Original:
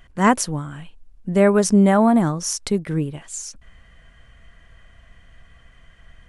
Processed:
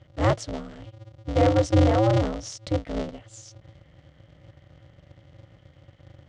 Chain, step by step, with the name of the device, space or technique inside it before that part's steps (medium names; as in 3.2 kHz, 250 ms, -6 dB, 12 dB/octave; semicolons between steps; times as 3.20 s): ring modulator pedal into a guitar cabinet (polarity switched at an audio rate 110 Hz; cabinet simulation 76–4000 Hz, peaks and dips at 210 Hz -9 dB, 380 Hz -10 dB, 560 Hz +6 dB, 1.6 kHz -6 dB, 2.5 kHz -7 dB); graphic EQ 125/250/500/1000/2000/4000/8000 Hz -4/-3/-3/-12/-5/-8/+8 dB; trim +2 dB